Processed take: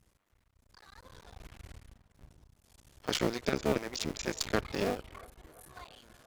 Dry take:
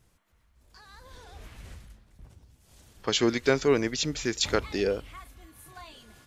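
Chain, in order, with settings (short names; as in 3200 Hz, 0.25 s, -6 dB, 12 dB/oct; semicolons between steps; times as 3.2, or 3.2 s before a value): cycle switcher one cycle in 2, muted; narrowing echo 0.34 s, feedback 74%, band-pass 820 Hz, level -23 dB; one-sided clip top -25 dBFS; gain -2 dB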